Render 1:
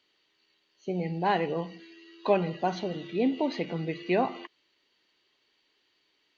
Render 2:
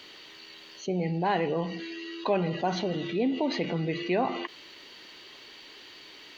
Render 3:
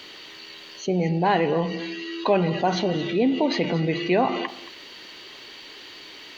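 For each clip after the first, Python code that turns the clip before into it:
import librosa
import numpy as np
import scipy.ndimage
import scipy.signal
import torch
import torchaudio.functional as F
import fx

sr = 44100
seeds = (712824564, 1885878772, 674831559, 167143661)

y1 = fx.env_flatten(x, sr, amount_pct=50)
y1 = y1 * librosa.db_to_amplitude(-3.5)
y2 = y1 + 10.0 ** (-16.0 / 20.0) * np.pad(y1, (int(225 * sr / 1000.0), 0))[:len(y1)]
y2 = y2 * librosa.db_to_amplitude(6.0)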